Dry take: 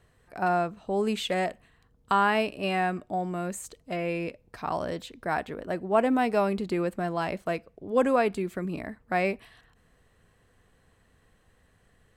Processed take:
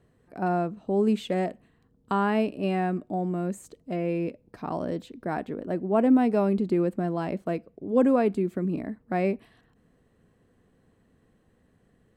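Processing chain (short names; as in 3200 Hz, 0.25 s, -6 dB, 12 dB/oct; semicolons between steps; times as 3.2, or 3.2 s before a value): bell 250 Hz +14.5 dB 2.5 oct; gain -8 dB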